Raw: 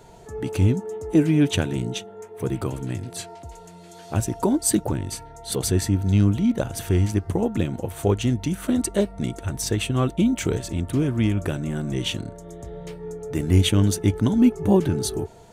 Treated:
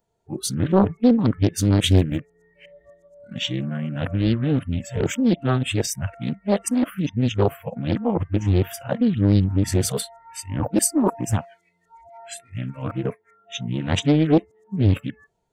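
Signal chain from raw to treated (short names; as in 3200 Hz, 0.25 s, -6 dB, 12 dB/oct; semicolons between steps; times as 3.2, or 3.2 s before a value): whole clip reversed; spectral noise reduction 28 dB; Doppler distortion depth 0.73 ms; gain +1.5 dB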